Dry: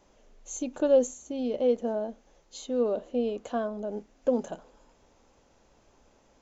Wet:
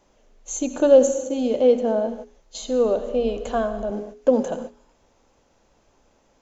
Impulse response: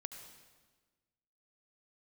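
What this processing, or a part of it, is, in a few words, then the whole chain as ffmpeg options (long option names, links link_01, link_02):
keyed gated reverb: -filter_complex "[0:a]asplit=3[link_01][link_02][link_03];[1:a]atrim=start_sample=2205[link_04];[link_02][link_04]afir=irnorm=-1:irlink=0[link_05];[link_03]apad=whole_len=283089[link_06];[link_05][link_06]sidechaingate=range=-33dB:threshold=-49dB:ratio=16:detection=peak,volume=6.5dB[link_07];[link_01][link_07]amix=inputs=2:normalize=0,bandreject=frequency=60:width_type=h:width=6,bandreject=frequency=120:width_type=h:width=6,bandreject=frequency=180:width_type=h:width=6,bandreject=frequency=240:width_type=h:width=6,bandreject=frequency=300:width_type=h:width=6,bandreject=frequency=360:width_type=h:width=6,bandreject=frequency=420:width_type=h:width=6,asettb=1/sr,asplit=3[link_08][link_09][link_10];[link_08]atrim=end=2.074[link_11];[link_09]atrim=start=2.07:end=3.91,asetpts=PTS-STARTPTS,afade=type=in:duration=0.004:curve=qsin,afade=type=out:start_time=1.836:duration=0.004:curve=qsin,asubboost=boost=11.5:cutoff=89[link_12];[link_10]atrim=start=3.906[link_13];[link_11][link_12]acrossfade=duration=0.004:curve1=hsin:curve2=qsin[link_14];[link_14][link_13]acrossfade=duration=0.004:curve1=qsin:curve2=hsin,volume=1dB"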